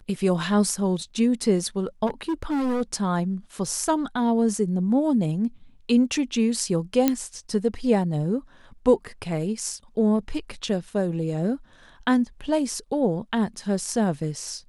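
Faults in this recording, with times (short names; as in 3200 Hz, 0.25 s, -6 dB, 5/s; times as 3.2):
2.06–2.82 clipped -22 dBFS
7.08 pop -6 dBFS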